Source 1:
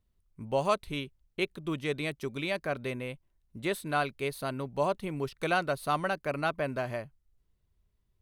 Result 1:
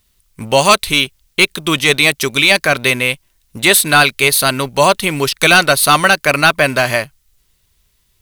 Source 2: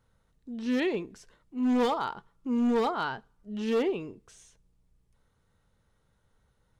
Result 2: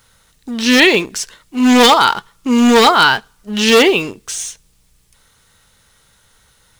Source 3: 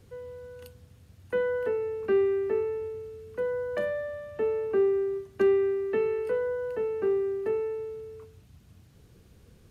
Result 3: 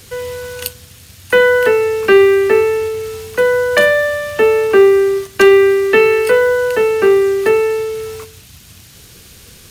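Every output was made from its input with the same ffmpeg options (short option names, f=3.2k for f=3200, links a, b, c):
-filter_complex "[0:a]tiltshelf=f=1.4k:g=-9.5,apsyclip=25.5dB,asplit=2[a][b];[b]acrusher=bits=3:mix=0:aa=0.5,volume=-5.5dB[c];[a][c]amix=inputs=2:normalize=0,volume=-5.5dB"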